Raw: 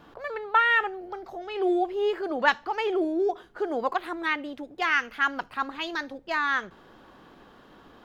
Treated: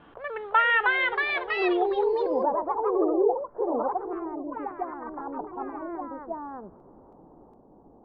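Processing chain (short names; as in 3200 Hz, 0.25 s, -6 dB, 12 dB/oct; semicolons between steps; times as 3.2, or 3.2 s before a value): Chebyshev low-pass 3200 Hz, order 4, from 1.86 s 860 Hz; echoes that change speed 0.372 s, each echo +2 st, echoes 3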